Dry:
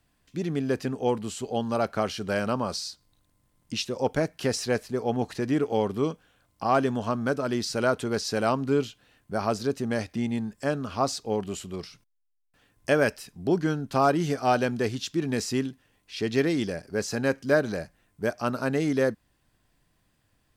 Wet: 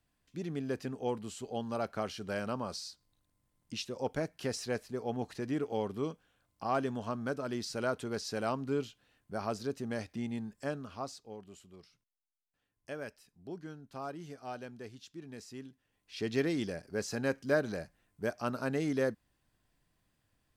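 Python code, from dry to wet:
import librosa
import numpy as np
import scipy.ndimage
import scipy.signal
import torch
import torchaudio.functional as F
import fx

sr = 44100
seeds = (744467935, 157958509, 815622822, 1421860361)

y = fx.gain(x, sr, db=fx.line((10.67, -9.0), (11.36, -19.5), (15.56, -19.5), (16.21, -7.0)))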